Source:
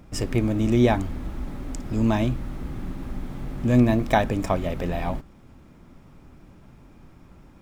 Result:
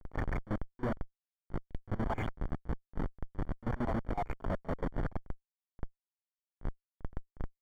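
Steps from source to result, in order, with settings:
time-frequency cells dropped at random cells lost 77%
reversed playback
downward compressor 4 to 1, threshold −34 dBFS, peak gain reduction 16.5 dB
reversed playback
comparator with hysteresis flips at −40.5 dBFS
Savitzky-Golay smoothing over 41 samples
echo ahead of the sound 40 ms −18 dB
level +10 dB

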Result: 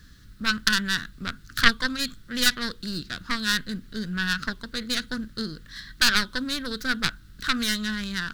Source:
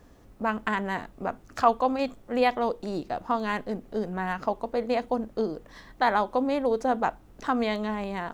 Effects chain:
stylus tracing distortion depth 0.4 ms
drawn EQ curve 170 Hz 0 dB, 800 Hz −29 dB, 1,500 Hz +6 dB, 2,400 Hz −4 dB, 4,100 Hz +11 dB, 6,200 Hz +2 dB
level +5.5 dB

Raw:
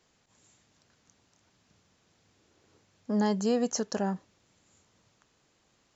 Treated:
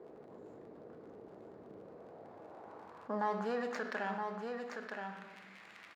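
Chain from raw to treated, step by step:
running median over 15 samples
surface crackle 46 per second −55 dBFS
band-pass filter sweep 440 Hz → 2,200 Hz, 0:01.72–0:04.21
single-tap delay 969 ms −10 dB
on a send at −7 dB: convolution reverb RT60 0.80 s, pre-delay 3 ms
on the sum: envelope flattener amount 50%
level +3.5 dB

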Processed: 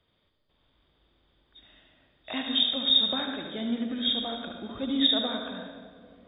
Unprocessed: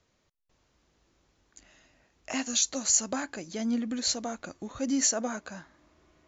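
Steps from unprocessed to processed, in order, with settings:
hearing-aid frequency compression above 3,000 Hz 4 to 1
convolution reverb RT60 2.3 s, pre-delay 73 ms, DRR 3 dB
level −1.5 dB

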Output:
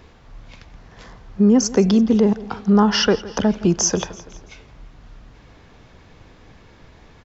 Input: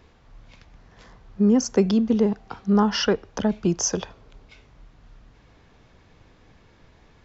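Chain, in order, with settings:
in parallel at +2 dB: brickwall limiter −17.5 dBFS, peak gain reduction 10.5 dB
on the sum: repeating echo 167 ms, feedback 52%, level −19 dB

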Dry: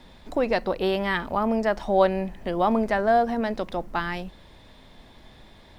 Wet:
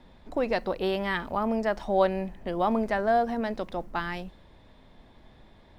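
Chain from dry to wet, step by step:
one half of a high-frequency compander decoder only
level −3.5 dB

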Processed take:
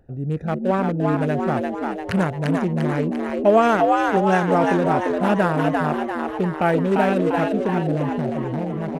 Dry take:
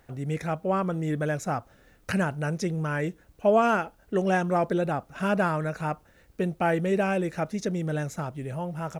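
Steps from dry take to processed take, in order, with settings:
adaptive Wiener filter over 41 samples
echo with shifted repeats 346 ms, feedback 53%, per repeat +82 Hz, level −3 dB
level +6 dB

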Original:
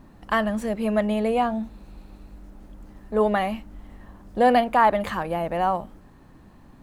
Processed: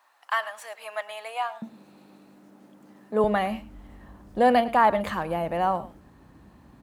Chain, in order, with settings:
high-pass filter 810 Hz 24 dB per octave, from 0:01.62 170 Hz, from 0:03.24 45 Hz
single-tap delay 107 ms −18.5 dB
level −1.5 dB

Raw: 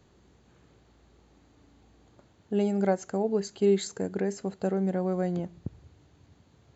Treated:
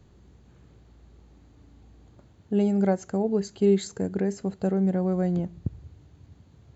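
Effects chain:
low-shelf EQ 200 Hz +11.5 dB
level −1 dB

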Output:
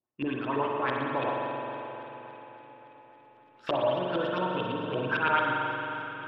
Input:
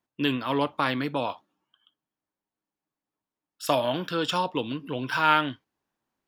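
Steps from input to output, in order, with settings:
camcorder AGC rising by 11 dB per second
tuned comb filter 120 Hz, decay 0.18 s, harmonics odd, mix 60%
hum removal 50.25 Hz, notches 23
auto-filter low-pass saw up 8.9 Hz 370–3,400 Hz
delay that swaps between a low-pass and a high-pass 141 ms, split 1,100 Hz, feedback 84%, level −13.5 dB
spring reverb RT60 3.3 s, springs 44 ms, chirp 25 ms, DRR −1 dB
level −2.5 dB

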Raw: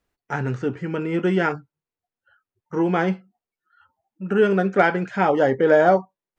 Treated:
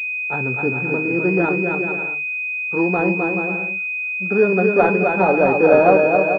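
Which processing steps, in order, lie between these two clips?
high-pass filter 210 Hz 6 dB per octave
bouncing-ball delay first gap 260 ms, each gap 0.65×, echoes 5
switching amplifier with a slow clock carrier 2,500 Hz
level +3 dB

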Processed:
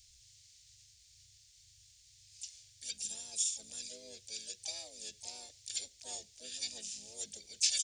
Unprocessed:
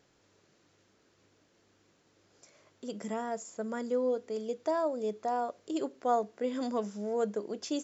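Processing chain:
inverse Chebyshev band-stop filter 150–2,200 Hz, stop band 40 dB
pitch-shifted copies added −12 semitones −13 dB, −4 semitones −8 dB, +4 semitones −6 dB
level +13 dB

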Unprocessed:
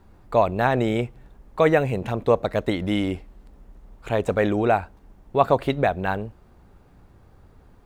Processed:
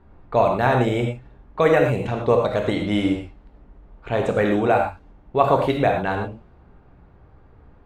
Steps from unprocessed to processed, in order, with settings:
low-pass that shuts in the quiet parts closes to 2,400 Hz, open at −17 dBFS
reverb whose tail is shaped and stops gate 140 ms flat, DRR 1.5 dB

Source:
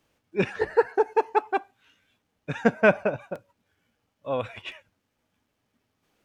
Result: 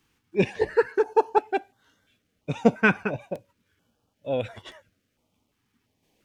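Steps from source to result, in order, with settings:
notch on a step sequencer 2.9 Hz 600–2,500 Hz
level +3 dB

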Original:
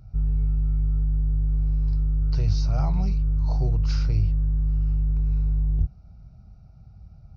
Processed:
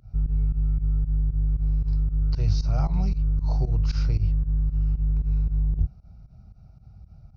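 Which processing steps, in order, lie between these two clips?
fake sidechain pumping 115 BPM, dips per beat 2, −19 dB, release 85 ms

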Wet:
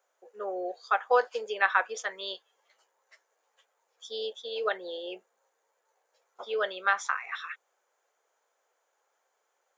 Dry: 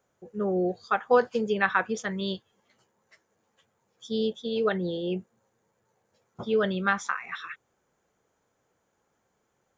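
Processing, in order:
high-pass filter 510 Hz 24 dB per octave

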